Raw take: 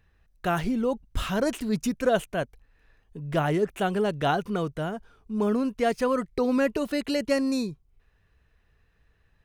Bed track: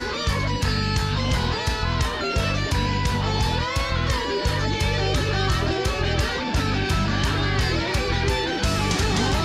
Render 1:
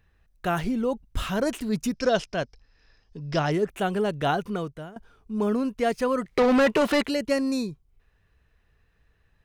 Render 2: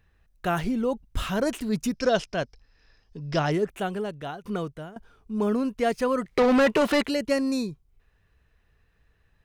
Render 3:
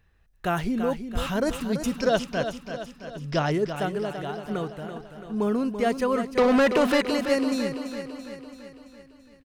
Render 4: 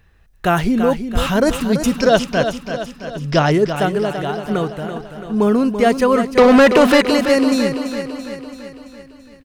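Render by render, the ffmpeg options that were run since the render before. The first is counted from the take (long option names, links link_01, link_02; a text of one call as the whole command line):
ffmpeg -i in.wav -filter_complex "[0:a]asettb=1/sr,asplit=3[link_01][link_02][link_03];[link_01]atrim=end=1.934[link_04];[link_02]atrim=start=1.93:end=3.52,asetpts=PTS-STARTPTS,afade=type=in:duration=0.004:curve=qsin,afade=type=out:start_time=1.586:duration=0.004:curve=qsin,lowpass=frequency=5200:width_type=q:width=12[link_05];[link_03]atrim=start=3.516[link_06];[link_04][link_05]acrossfade=duration=0.004:curve1=hsin:curve2=qsin[link_07];[link_07][link_06]acrossfade=duration=0.004:curve1=qsin:curve2=hsin,asettb=1/sr,asplit=3[link_08][link_09][link_10];[link_08]atrim=end=6.254[link_11];[link_09]atrim=start=6.25:end=7.07,asetpts=PTS-STARTPTS,afade=type=in:duration=0.004:curve=qsin,afade=type=out:start_time=0.816:duration=0.004:curve=qsin,asplit=2[link_12][link_13];[link_13]highpass=frequency=720:poles=1,volume=25dB,asoftclip=type=tanh:threshold=-12.5dB[link_14];[link_12][link_14]amix=inputs=2:normalize=0,lowpass=frequency=2700:poles=1,volume=-6dB[link_15];[link_10]atrim=start=7.066[link_16];[link_11][link_15]acrossfade=duration=0.004:curve1=hsin:curve2=qsin[link_17];[link_17][link_16]acrossfade=duration=0.004:curve1=qsin:curve2=hsin,asplit=2[link_18][link_19];[link_18]atrim=end=4.96,asetpts=PTS-STARTPTS,afade=type=out:start_time=4.47:duration=0.49:silence=0.158489[link_20];[link_19]atrim=start=4.96,asetpts=PTS-STARTPTS,afade=type=in:duration=0.004:curve=hsin:silence=0.158489[link_21];[link_20][link_21]concat=n=2:v=0:a=1" out.wav
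ffmpeg -i in.wav -filter_complex "[0:a]asplit=2[link_01][link_02];[link_01]atrim=end=4.44,asetpts=PTS-STARTPTS,afade=type=out:start_time=3.54:duration=0.9:silence=0.141254[link_03];[link_02]atrim=start=4.44,asetpts=PTS-STARTPTS,afade=type=in:duration=0.004:curve=hsin:silence=0.141254[link_04];[link_03][link_04]concat=n=2:v=0:a=1" out.wav
ffmpeg -i in.wav -af "aecho=1:1:335|670|1005|1340|1675|2010|2345:0.355|0.202|0.115|0.0657|0.0375|0.0213|0.0122" out.wav
ffmpeg -i in.wav -af "volume=10dB,alimiter=limit=-2dB:level=0:latency=1" out.wav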